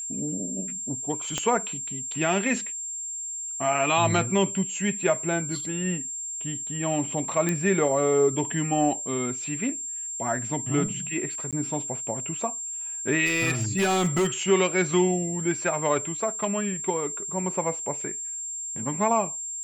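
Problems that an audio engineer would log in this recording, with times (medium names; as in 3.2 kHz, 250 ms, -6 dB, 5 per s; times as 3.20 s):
whine 7.4 kHz -31 dBFS
1.38 s: pop -13 dBFS
7.49 s: pop -11 dBFS
11.51–11.53 s: dropout 17 ms
13.25–14.27 s: clipped -19 dBFS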